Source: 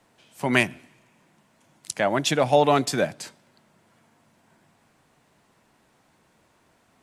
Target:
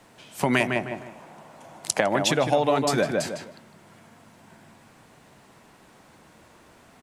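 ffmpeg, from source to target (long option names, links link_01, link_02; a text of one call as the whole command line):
ffmpeg -i in.wav -filter_complex "[0:a]asettb=1/sr,asplit=3[link_01][link_02][link_03];[link_01]atrim=end=0.604[link_04];[link_02]atrim=start=0.6:end=2.01,asetpts=PTS-STARTPTS,afade=type=in:duration=0.004:curve=qsin,afade=type=out:start_time=1.406:duration=0.004:curve=qsin,equalizer=frequency=720:width_type=o:width=1.5:gain=11[link_05];[link_03]atrim=start=2.006[link_06];[link_04][link_05]acrossfade=duration=0.004:curve1=hsin:curve2=qsin[link_07];[link_07][link_06]acrossfade=duration=0.004:curve1=qsin:curve2=hsin,asplit=2[link_08][link_09];[link_09]adelay=155,lowpass=frequency=1900:poles=1,volume=-5dB,asplit=2[link_10][link_11];[link_11]adelay=155,lowpass=frequency=1900:poles=1,volume=0.23,asplit=2[link_12][link_13];[link_13]adelay=155,lowpass=frequency=1900:poles=1,volume=0.23[link_14];[link_08][link_10][link_12][link_14]amix=inputs=4:normalize=0,acompressor=threshold=-29dB:ratio=4,volume=8.5dB" out.wav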